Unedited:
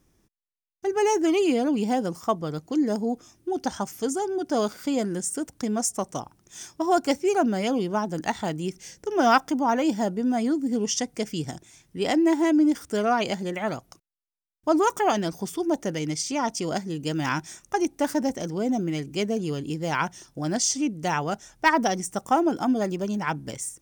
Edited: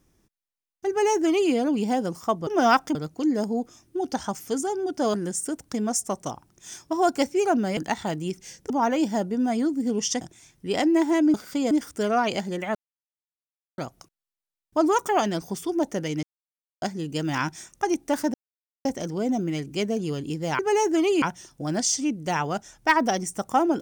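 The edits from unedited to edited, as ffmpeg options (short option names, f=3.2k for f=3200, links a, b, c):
-filter_complex "[0:a]asplit=15[a][b][c][d][e][f][g][h][i][j][k][l][m][n][o];[a]atrim=end=2.472[p];[b]atrim=start=9.078:end=9.562[q];[c]atrim=start=2.468:end=4.662[r];[d]atrim=start=5.028:end=7.662[s];[e]atrim=start=8.148:end=9.082[t];[f]atrim=start=9.558:end=11.072[u];[g]atrim=start=11.518:end=12.652[v];[h]atrim=start=4.658:end=5.032[w];[i]atrim=start=12.648:end=13.69,asetpts=PTS-STARTPTS,afade=t=out:st=1.038:d=0.004:c=hsin,apad=pad_dur=1.03[x];[j]atrim=start=13.69:end=16.14,asetpts=PTS-STARTPTS,afade=t=in:d=0.004:c=hsin,afade=t=out:st=2.446:d=0.004:c=hsin[y];[k]atrim=start=16.14:end=16.73,asetpts=PTS-STARTPTS,volume=0[z];[l]atrim=start=16.73:end=18.25,asetpts=PTS-STARTPTS,afade=t=in:d=0.004:c=hsin,afade=t=out:st=1.516:d=0.004:c=hsin,apad=pad_dur=0.51[aa];[m]atrim=start=18.25:end=19.992,asetpts=PTS-STARTPTS,afade=t=in:d=0.004:c=hsin[ab];[n]atrim=start=0.888:end=1.522[ac];[o]atrim=start=19.988[ad];[p][q]acrossfade=d=0.004:c1=hsin:c2=hsin[ae];[ae][r]acrossfade=d=0.004:c1=hsin:c2=hsin[af];[af][s]acrossfade=d=0.004:c1=hsin:c2=hsin[ag];[ag][t]acrossfade=d=0.004:c1=hsin:c2=hsin[ah];[ah][u]acrossfade=d=0.004:c1=hsin:c2=hsin[ai];[ai][v]acrossfade=d=0.004:c1=hsin:c2=hsin[aj];[aj][w]acrossfade=d=0.004:c1=hsin:c2=hsin[ak];[x][y][z][aa][ab]concat=n=5:v=0:a=1[al];[ak][al]acrossfade=d=0.004:c1=hsin:c2=hsin[am];[am][ac]acrossfade=d=0.004:c1=hsin:c2=hsin[an];[an][ad]acrossfade=d=0.004:c1=hsin:c2=hsin"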